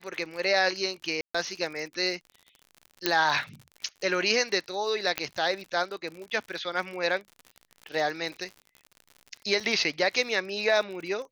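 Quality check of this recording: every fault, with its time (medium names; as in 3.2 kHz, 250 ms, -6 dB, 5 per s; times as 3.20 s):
crackle 61 per s -36 dBFS
1.21–1.34 s: dropout 135 ms
3.06 s: pop -7 dBFS
5.18 s: pop -10 dBFS
9.60 s: dropout 4.3 ms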